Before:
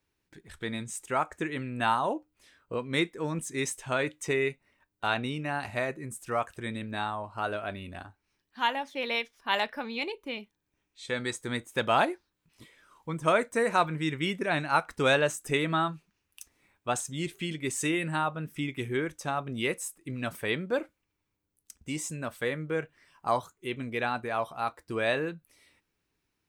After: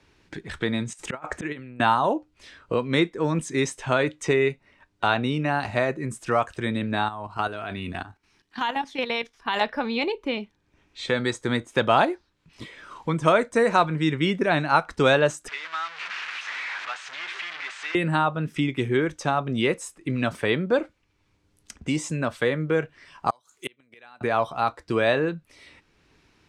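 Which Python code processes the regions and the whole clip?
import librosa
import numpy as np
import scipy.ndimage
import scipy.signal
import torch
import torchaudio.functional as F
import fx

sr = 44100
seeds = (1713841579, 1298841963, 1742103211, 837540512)

y = fx.chain(x, sr, fx.auto_swell(attack_ms=287.0),
    fx.over_compress(threshold_db=-45.0, ratio=-0.5), at=(0.93, 1.8))
y = fx.chain(y, sr, fx.high_shelf(hz=7600.0, db=10.0),
    fx.notch(hz=570.0, q=5.1),
    fx.level_steps(step_db=11), at=(7.06, 9.61))
y = fx.chain(y, sr, fx.delta_mod(bps=64000, step_db=-24.0),
    fx.ladder_bandpass(hz=2100.0, resonance_pct=25), at=(15.48, 17.95))
y = fx.chain(y, sr, fx.gate_flip(shuts_db=-28.0, range_db=-36),
    fx.riaa(side='recording'), at=(23.3, 24.21))
y = scipy.signal.sosfilt(scipy.signal.butter(2, 5600.0, 'lowpass', fs=sr, output='sos'), y)
y = fx.dynamic_eq(y, sr, hz=2300.0, q=1.3, threshold_db=-44.0, ratio=4.0, max_db=-4)
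y = fx.band_squash(y, sr, depth_pct=40)
y = y * 10.0 ** (8.0 / 20.0)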